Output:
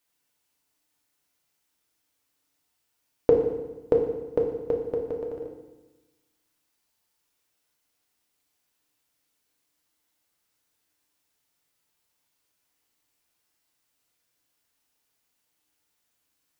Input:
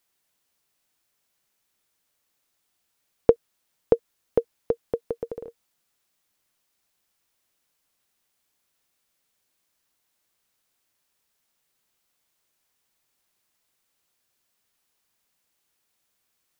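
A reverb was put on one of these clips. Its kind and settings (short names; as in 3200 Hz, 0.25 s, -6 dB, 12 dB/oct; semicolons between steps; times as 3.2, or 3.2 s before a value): FDN reverb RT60 1.1 s, low-frequency decay 1.25×, high-frequency decay 0.95×, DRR 0 dB; gain -4 dB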